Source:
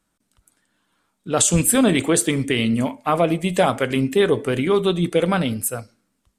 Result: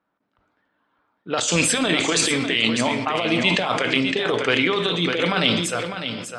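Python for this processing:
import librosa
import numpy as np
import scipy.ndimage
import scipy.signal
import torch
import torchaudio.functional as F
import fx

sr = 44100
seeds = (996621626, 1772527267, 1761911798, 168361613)

y = fx.highpass(x, sr, hz=720.0, slope=6)
y = fx.env_lowpass(y, sr, base_hz=1000.0, full_db=-20.5)
y = scipy.signal.sosfilt(scipy.signal.butter(4, 5500.0, 'lowpass', fs=sr, output='sos'), y)
y = fx.high_shelf(y, sr, hz=2400.0, db=9.0)
y = fx.over_compress(y, sr, threshold_db=-23.0, ratio=-0.5)
y = y + 10.0 ** (-9.0 / 20.0) * np.pad(y, (int(602 * sr / 1000.0), 0))[:len(y)]
y = fx.room_shoebox(y, sr, seeds[0], volume_m3=1100.0, walls='mixed', distance_m=0.42)
y = fx.sustainer(y, sr, db_per_s=40.0)
y = y * librosa.db_to_amplitude(3.0)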